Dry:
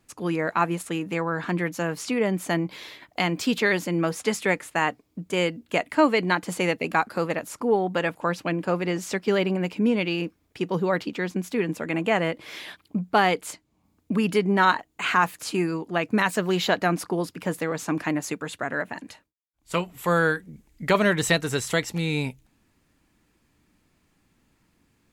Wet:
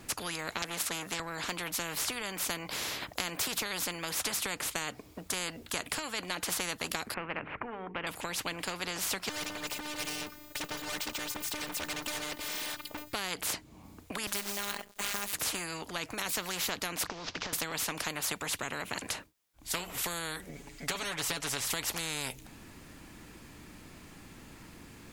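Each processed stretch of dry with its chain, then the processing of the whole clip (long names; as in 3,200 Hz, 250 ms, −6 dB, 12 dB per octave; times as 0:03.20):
0:00.62–0:01.20: high-pass filter 130 Hz + saturating transformer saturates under 2,000 Hz
0:07.14–0:08.07: Butterworth low-pass 2,500 Hz 48 dB per octave + mains-hum notches 50/100/150/200/250/300/350/400/450 Hz
0:09.29–0:13.13: mu-law and A-law mismatch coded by mu + phases set to zero 299 Hz + hard clipping −24.5 dBFS
0:14.27–0:15.33: phases set to zero 202 Hz + log-companded quantiser 6 bits
0:17.07–0:17.53: variable-slope delta modulation 32 kbit/s + downward compressor 16 to 1, threshold −38 dBFS
0:20.49–0:21.65: parametric band 13,000 Hz −10 dB 0.74 octaves + comb filter 7.1 ms, depth 92%
whole clip: downward compressor, threshold −25 dBFS; every bin compressed towards the loudest bin 4 to 1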